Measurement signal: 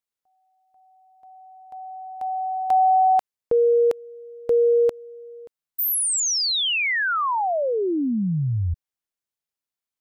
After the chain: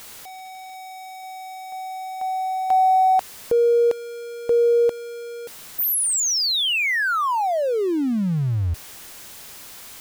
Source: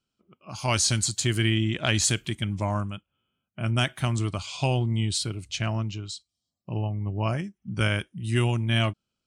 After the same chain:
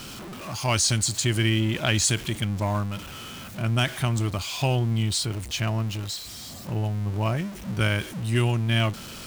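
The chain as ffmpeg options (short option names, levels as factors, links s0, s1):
-af "aeval=exprs='val(0)+0.5*0.0237*sgn(val(0))':c=same"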